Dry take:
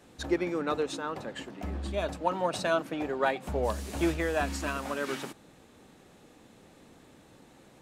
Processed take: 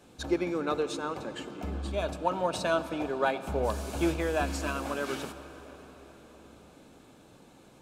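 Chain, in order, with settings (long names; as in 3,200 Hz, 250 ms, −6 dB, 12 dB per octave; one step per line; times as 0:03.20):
notch filter 1,900 Hz, Q 6.3
on a send: convolution reverb RT60 5.5 s, pre-delay 57 ms, DRR 12 dB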